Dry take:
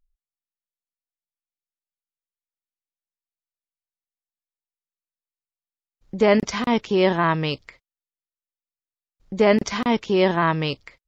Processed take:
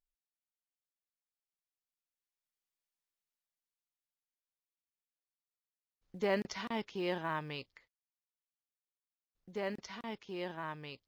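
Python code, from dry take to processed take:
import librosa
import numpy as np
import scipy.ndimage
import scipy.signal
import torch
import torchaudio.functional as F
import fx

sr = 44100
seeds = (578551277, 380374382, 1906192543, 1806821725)

y = fx.doppler_pass(x, sr, speed_mps=16, closest_m=9.6, pass_at_s=2.86)
y = fx.tilt_eq(y, sr, slope=1.5)
y = fx.quant_float(y, sr, bits=4)
y = fx.high_shelf(y, sr, hz=6100.0, db=-6.5)
y = F.gain(torch.from_numpy(y), 1.0).numpy()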